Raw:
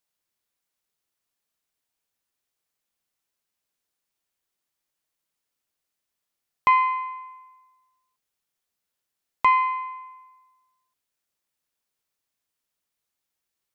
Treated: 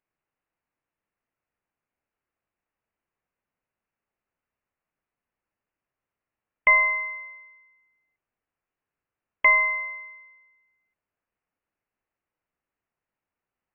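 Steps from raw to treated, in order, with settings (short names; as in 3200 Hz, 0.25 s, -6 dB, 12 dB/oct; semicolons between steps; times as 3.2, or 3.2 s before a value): tilt +2.5 dB/oct; inverted band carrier 3100 Hz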